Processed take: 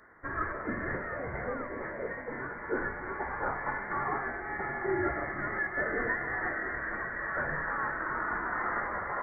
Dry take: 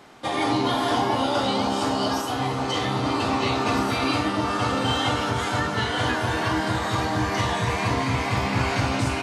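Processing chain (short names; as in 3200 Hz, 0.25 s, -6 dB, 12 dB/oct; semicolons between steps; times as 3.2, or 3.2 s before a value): steep high-pass 1600 Hz 72 dB/oct; inverted band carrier 3500 Hz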